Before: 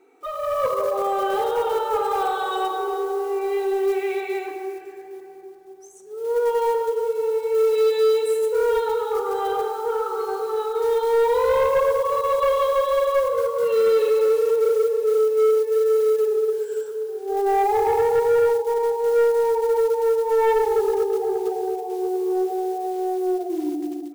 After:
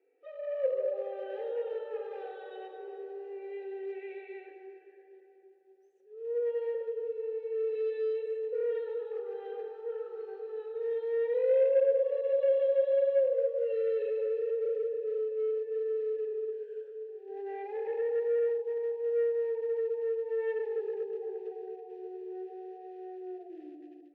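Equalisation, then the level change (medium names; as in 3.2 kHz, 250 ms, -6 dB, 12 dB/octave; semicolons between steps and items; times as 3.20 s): Gaussian low-pass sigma 1.7 samples; vowel filter e; -4.0 dB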